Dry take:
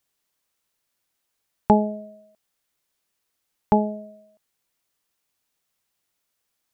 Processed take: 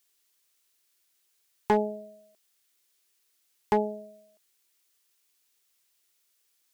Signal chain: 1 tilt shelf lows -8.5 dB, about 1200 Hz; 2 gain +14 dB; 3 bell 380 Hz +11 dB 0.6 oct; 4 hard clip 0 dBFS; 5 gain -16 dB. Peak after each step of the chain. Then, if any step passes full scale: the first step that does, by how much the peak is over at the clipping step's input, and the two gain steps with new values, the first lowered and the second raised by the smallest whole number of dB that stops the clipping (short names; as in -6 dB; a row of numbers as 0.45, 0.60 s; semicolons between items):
-7.5, +6.5, +9.0, 0.0, -16.0 dBFS; step 2, 9.0 dB; step 2 +5 dB, step 5 -7 dB